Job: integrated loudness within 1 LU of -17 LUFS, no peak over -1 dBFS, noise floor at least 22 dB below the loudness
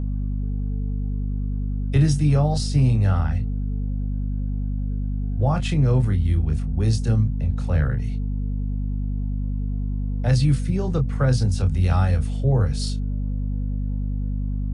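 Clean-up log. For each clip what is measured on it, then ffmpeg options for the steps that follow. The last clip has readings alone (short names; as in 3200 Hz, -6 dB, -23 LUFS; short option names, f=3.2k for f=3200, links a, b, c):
hum 50 Hz; harmonics up to 250 Hz; hum level -22 dBFS; loudness -23.5 LUFS; peak -8.0 dBFS; loudness target -17.0 LUFS
-> -af "bandreject=f=50:t=h:w=6,bandreject=f=100:t=h:w=6,bandreject=f=150:t=h:w=6,bandreject=f=200:t=h:w=6,bandreject=f=250:t=h:w=6"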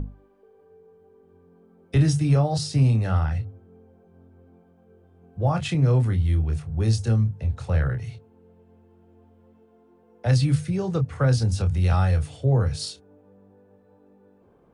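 hum none; loudness -23.0 LUFS; peak -9.5 dBFS; loudness target -17.0 LUFS
-> -af "volume=6dB"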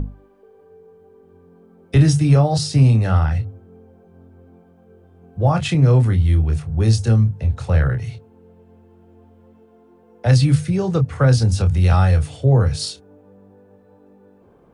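loudness -17.0 LUFS; peak -3.5 dBFS; noise floor -52 dBFS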